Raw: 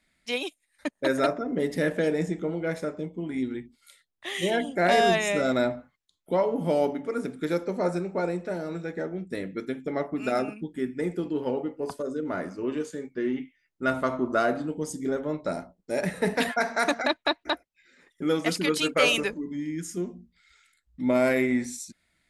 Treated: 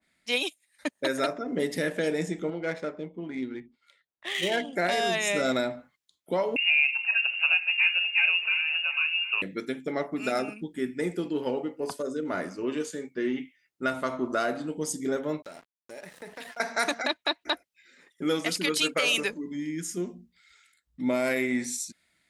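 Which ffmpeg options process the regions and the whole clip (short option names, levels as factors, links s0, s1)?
-filter_complex "[0:a]asettb=1/sr,asplit=3[s0][s1][s2];[s0]atrim=end=2.504[s3];[s1]atrim=start=2.5:end=4.73,asetpts=PTS-STARTPTS,afade=t=in:d=0.004:c=qsin,afade=t=out:st=2.226:d=0.004:c=qsin,lowshelf=f=390:g=-4.5,adynamicsmooth=sensitivity=5.5:basefreq=2400[s4];[s2]atrim=start=4.726[s5];[s3][s4]acrossfade=d=0.004:c1=hsin:c2=qsin[s6];[s6][s5]acrossfade=d=0.004:c1=qsin:c2=hsin,asettb=1/sr,asplit=3[s7][s8][s9];[s7]atrim=end=6.564[s10];[s8]atrim=start=6.56:end=9.42,asetpts=PTS-STARTPTS,afade=t=in:d=0.004:c=qsin,afade=t=out:st=2.856:d=0.004:c=qsin,aecho=1:1:733:0.141,atrim=end_sample=126126,acompressor=mode=upward:threshold=0.0355:ratio=2.5:attack=3.2:release=140:knee=2.83:detection=peak,lowpass=f=2600:t=q:w=0.5098,lowpass=f=2600:t=q:w=0.6013,lowpass=f=2600:t=q:w=0.9,lowpass=f=2600:t=q:w=2.563,afreqshift=-3000[s11];[s9]atrim=start=9.416[s12];[s10][s11]acrossfade=d=0.004:c1=hsin:c2=qsin[s13];[s13][s12]acrossfade=d=0.004:c1=qsin:c2=hsin,asettb=1/sr,asplit=3[s14][s15][s16];[s14]atrim=end=15.424[s17];[s15]atrim=start=15.42:end=16.6,asetpts=PTS-STARTPTS,afade=t=in:d=0.004:c=qsin,afade=t=out:st=1.176:d=0.004:c=qsin,equalizer=f=190:w=0.78:g=-6.5,aeval=exprs='sgn(val(0))*max(abs(val(0))-0.00841,0)':c=same,acompressor=threshold=0.00708:ratio=3:attack=3.2:release=140:knee=1:detection=peak[s18];[s16]atrim=start=16.596[s19];[s17][s18]acrossfade=d=0.004:c1=hsin:c2=qsin[s20];[s20][s19]acrossfade=d=0.004:c1=qsin:c2=hsin,highpass=f=140:p=1,alimiter=limit=0.141:level=0:latency=1:release=344,adynamicequalizer=threshold=0.00631:dfrequency=1900:dqfactor=0.7:tfrequency=1900:tqfactor=0.7:attack=5:release=100:ratio=0.375:range=3:mode=boostabove:tftype=highshelf"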